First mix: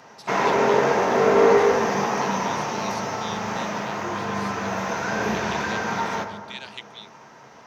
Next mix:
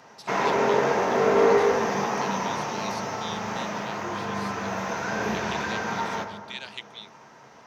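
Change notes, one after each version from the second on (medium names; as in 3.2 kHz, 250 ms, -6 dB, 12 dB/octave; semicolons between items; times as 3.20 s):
background -3.0 dB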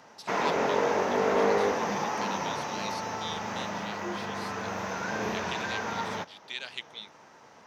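reverb: off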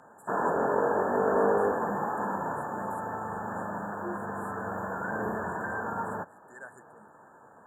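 master: add brick-wall FIR band-stop 1.8–6.9 kHz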